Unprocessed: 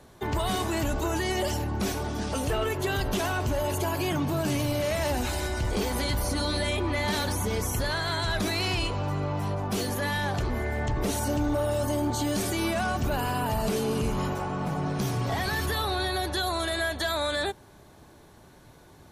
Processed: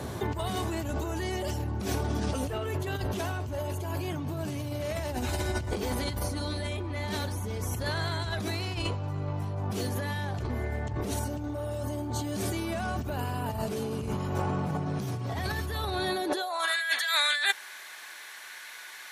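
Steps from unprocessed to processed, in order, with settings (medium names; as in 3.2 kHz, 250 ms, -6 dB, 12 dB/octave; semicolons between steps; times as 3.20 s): high-pass sweep 84 Hz -> 1.9 kHz, 15.89–16.80 s; peaking EQ 340 Hz +2.5 dB 2.5 oct; compressor with a negative ratio -35 dBFS, ratio -1; trim +3.5 dB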